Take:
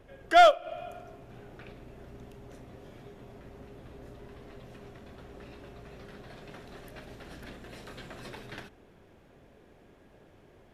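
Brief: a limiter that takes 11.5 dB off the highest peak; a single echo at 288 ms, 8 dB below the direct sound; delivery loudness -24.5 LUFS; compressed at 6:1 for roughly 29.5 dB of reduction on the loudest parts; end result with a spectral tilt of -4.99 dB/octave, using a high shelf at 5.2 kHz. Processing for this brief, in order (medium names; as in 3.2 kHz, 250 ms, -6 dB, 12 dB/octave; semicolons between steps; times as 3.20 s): treble shelf 5.2 kHz -3.5 dB; compression 6:1, threshold -48 dBFS; peak limiter -44.5 dBFS; delay 288 ms -8 dB; trim +30 dB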